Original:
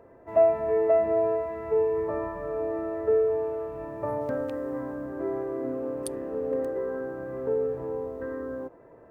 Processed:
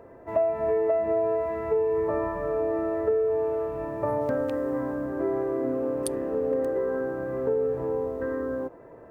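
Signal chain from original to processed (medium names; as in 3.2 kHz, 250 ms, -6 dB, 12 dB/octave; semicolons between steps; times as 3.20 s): compression 6:1, threshold -26 dBFS, peak gain reduction 10 dB; trim +4.5 dB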